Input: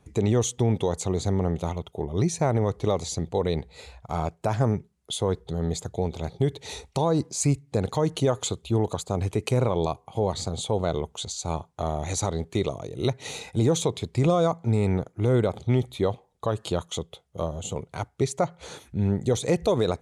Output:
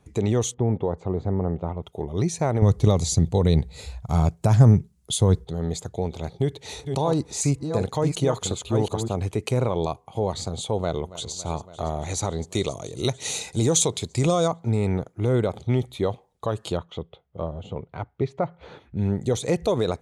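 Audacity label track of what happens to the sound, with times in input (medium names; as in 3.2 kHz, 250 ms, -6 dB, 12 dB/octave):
0.540000	1.830000	low-pass 1.3 kHz
2.620000	5.450000	tone controls bass +12 dB, treble +8 dB
6.310000	9.220000	chunks repeated in reverse 369 ms, level -6 dB
10.770000	11.330000	echo throw 280 ms, feedback 80%, level -16.5 dB
12.420000	14.480000	peaking EQ 7.8 kHz +12 dB 1.8 oct
16.770000	18.970000	distance through air 350 m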